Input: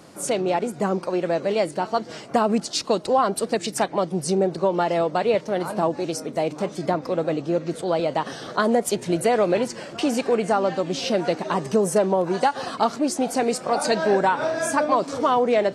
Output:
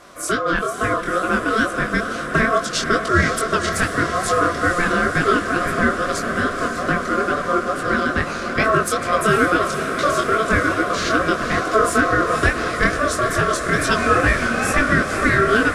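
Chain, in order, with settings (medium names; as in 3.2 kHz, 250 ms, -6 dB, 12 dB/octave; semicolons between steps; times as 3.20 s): ring modulator 880 Hz; chorus 2.3 Hz, delay 18 ms, depth 7.7 ms; echo that smears into a reverb 512 ms, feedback 78%, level -9 dB; trim +8.5 dB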